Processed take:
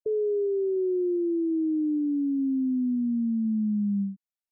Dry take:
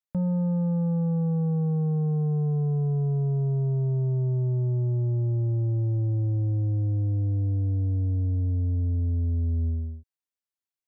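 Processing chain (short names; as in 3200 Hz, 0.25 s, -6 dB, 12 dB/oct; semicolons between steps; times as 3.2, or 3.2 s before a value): spectral gate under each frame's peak -10 dB strong; wide varispeed 2.41×; gain -1 dB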